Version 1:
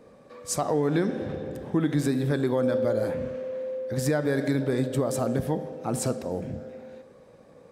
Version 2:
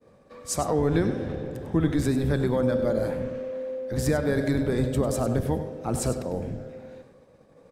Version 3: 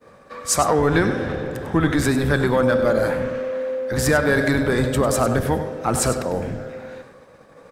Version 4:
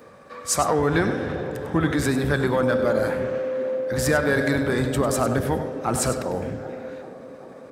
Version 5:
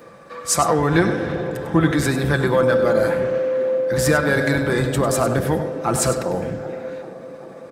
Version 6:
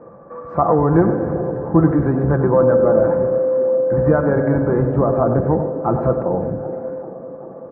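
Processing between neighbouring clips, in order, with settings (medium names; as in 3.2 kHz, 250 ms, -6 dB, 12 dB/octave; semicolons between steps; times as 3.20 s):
octave divider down 1 oct, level -4 dB; expander -47 dBFS; delay 99 ms -11 dB
peaking EQ 1.4 kHz +7 dB 1.2 oct; in parallel at -7 dB: saturation -22.5 dBFS, distortion -11 dB; on the sum: tilt shelf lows -3 dB, about 650 Hz; trim +4 dB
high-pass 55 Hz; upward compressor, threshold -38 dBFS; feedback echo behind a band-pass 388 ms, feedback 69%, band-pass 410 Hz, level -13 dB; trim -3 dB
comb 5.9 ms, depth 41%; trim +3 dB
low-pass 1.1 kHz 24 dB/octave; trim +3.5 dB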